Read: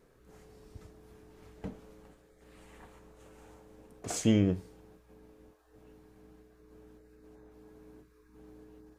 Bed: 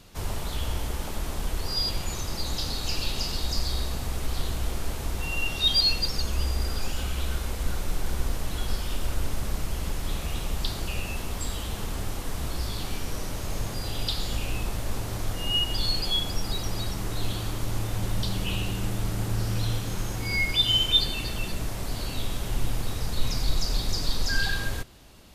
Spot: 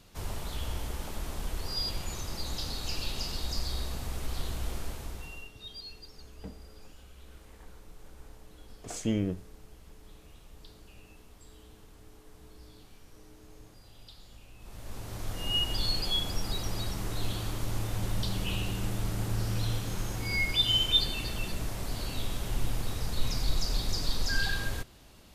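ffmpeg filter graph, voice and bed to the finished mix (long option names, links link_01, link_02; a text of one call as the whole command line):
ffmpeg -i stem1.wav -i stem2.wav -filter_complex "[0:a]adelay=4800,volume=-4dB[link_01];[1:a]volume=14dB,afade=type=out:start_time=4.76:duration=0.76:silence=0.133352,afade=type=in:start_time=14.58:duration=1:silence=0.105925[link_02];[link_01][link_02]amix=inputs=2:normalize=0" out.wav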